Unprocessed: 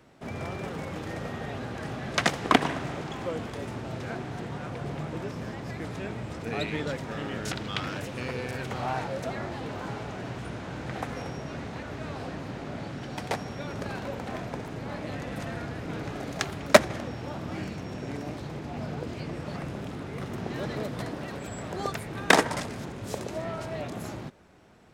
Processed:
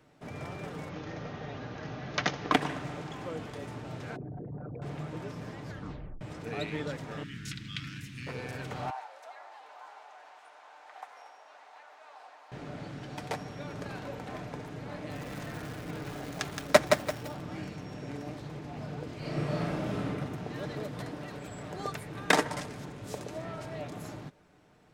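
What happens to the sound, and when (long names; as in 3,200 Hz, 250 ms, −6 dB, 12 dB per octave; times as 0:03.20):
0:00.89–0:02.52: Butterworth low-pass 6,600 Hz 96 dB per octave
0:04.16–0:04.82: spectral envelope exaggerated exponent 3
0:05.65: tape stop 0.56 s
0:07.23–0:08.27: Chebyshev band-stop filter 210–2,000 Hz
0:08.90–0:12.52: four-pole ladder high-pass 690 Hz, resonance 50%
0:14.93–0:17.41: feedback echo at a low word length 170 ms, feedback 35%, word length 6 bits, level −4 dB
0:19.18–0:20.07: thrown reverb, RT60 1.5 s, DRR −7.5 dB
whole clip: comb filter 6.7 ms, depth 35%; level −5.5 dB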